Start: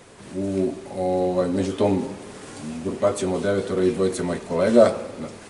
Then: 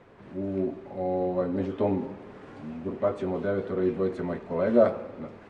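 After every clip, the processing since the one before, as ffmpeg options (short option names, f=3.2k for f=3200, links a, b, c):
-af "lowpass=2k,volume=-5.5dB"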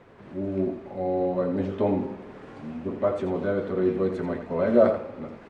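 -af "aecho=1:1:84:0.355,volume=1.5dB"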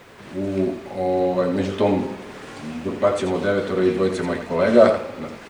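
-af "crystalizer=i=7.5:c=0,volume=4dB"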